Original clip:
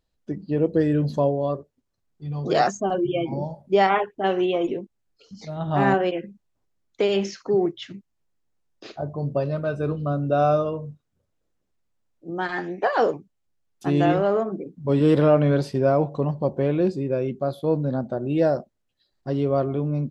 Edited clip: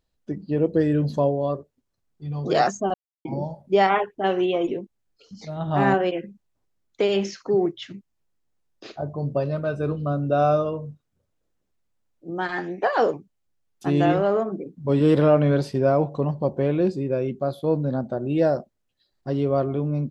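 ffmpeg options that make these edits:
-filter_complex "[0:a]asplit=3[s0][s1][s2];[s0]atrim=end=2.94,asetpts=PTS-STARTPTS,afade=t=out:st=2.936:d=0.004:c=hsin[s3];[s1]atrim=start=2.94:end=3.25,asetpts=PTS-STARTPTS,volume=0[s4];[s2]atrim=start=3.25,asetpts=PTS-STARTPTS,afade=t=in:d=0.004:c=hsin[s5];[s3][s4][s5]concat=n=3:v=0:a=1"

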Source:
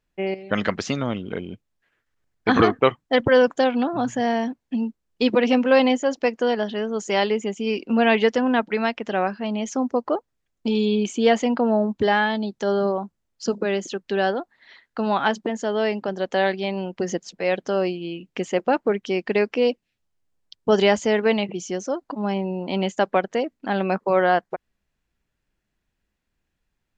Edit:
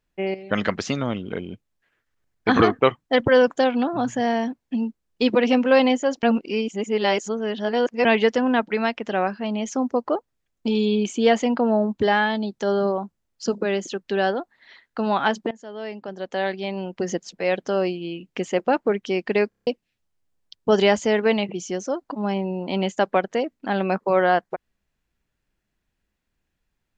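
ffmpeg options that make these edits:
-filter_complex "[0:a]asplit=10[s0][s1][s2][s3][s4][s5][s6][s7][s8][s9];[s0]atrim=end=6.232[s10];[s1]atrim=start=6.228:end=8.052,asetpts=PTS-STARTPTS,areverse[s11];[s2]atrim=start=8.048:end=15.51,asetpts=PTS-STARTPTS,afade=t=out:st=7.458:d=0.004:c=hsin:silence=0.125893[s12];[s3]atrim=start=15.51:end=19.522,asetpts=PTS-STARTPTS,afade=t=in:d=1.61:silence=0.125893[s13];[s4]atrim=start=19.488:end=19.522[s14];[s5]atrim=start=19.488:end=19.522[s15];[s6]atrim=start=19.488:end=19.522[s16];[s7]atrim=start=19.488:end=19.522[s17];[s8]atrim=start=19.488:end=19.522[s18];[s9]atrim=start=19.668[s19];[s10][s11]acrossfade=d=0.004:c1=hsin:c2=hsin[s20];[s12][s13]concat=n=2:v=0:a=1[s21];[s20][s21]acrossfade=d=0.004:c1=hsin:c2=hsin[s22];[s22][s14]acrossfade=d=0.004:c1=hsin:c2=hsin[s23];[s23][s15]acrossfade=d=0.004:c1=hsin:c2=hsin[s24];[s24][s16]acrossfade=d=0.004:c1=hsin:c2=hsin[s25];[s25][s17]acrossfade=d=0.004:c1=hsin:c2=hsin[s26];[s26][s18]acrossfade=d=0.004:c1=hsin:c2=hsin[s27];[s27][s19]acrossfade=d=0.004:c1=hsin:c2=hsin"

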